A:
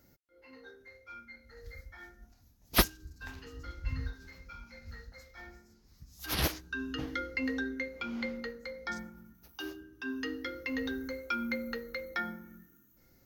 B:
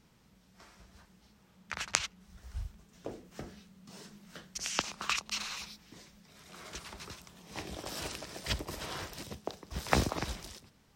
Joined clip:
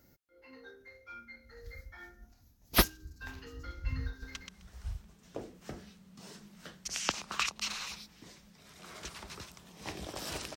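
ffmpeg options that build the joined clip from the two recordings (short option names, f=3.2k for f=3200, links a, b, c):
-filter_complex "[0:a]apad=whole_dur=10.56,atrim=end=10.56,atrim=end=4.352[a];[1:a]atrim=start=2.048:end=8.26[b];[a][b]acrossfade=d=0.004:c1=hsin:c2=hsin,asplit=2[c][d];[d]afade=t=in:st=4.09:d=0.01,afade=t=out:st=4.35:d=0.01,aecho=0:1:130|260|390:0.794328|0.119149|0.0178724[e];[c][e]amix=inputs=2:normalize=0"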